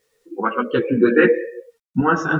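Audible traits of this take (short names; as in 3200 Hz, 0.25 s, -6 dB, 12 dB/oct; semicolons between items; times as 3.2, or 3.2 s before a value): random-step tremolo, depth 55%; a quantiser's noise floor 12-bit, dither none; a shimmering, thickened sound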